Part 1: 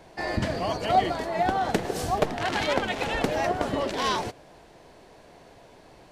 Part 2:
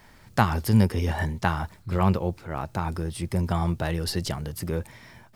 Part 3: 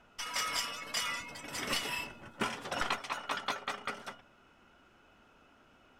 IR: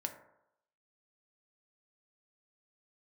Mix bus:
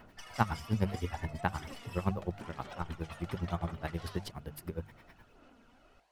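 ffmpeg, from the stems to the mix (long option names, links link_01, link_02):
-filter_complex "[0:a]highpass=580,volume=-18dB[link_01];[1:a]equalizer=frequency=6600:width=0.85:gain=-10,aeval=exprs='val(0)*pow(10,-27*(0.5-0.5*cos(2*PI*9.6*n/s))/20)':channel_layout=same,volume=-4.5dB[link_02];[2:a]lowshelf=frequency=480:gain=7,aphaser=in_gain=1:out_gain=1:delay=4.3:decay=0.46:speed=0.8:type=sinusoidal,volume=-5.5dB[link_03];[link_01][link_03]amix=inputs=2:normalize=0,aphaser=in_gain=1:out_gain=1:delay=1.6:decay=0.38:speed=1.1:type=sinusoidal,acompressor=threshold=-47dB:ratio=4,volume=0dB[link_04];[link_02][link_04]amix=inputs=2:normalize=0,bandreject=frequency=50:width_type=h:width=6,bandreject=frequency=100:width_type=h:width=6,bandreject=frequency=150:width_type=h:width=6,bandreject=frequency=200:width_type=h:width=6"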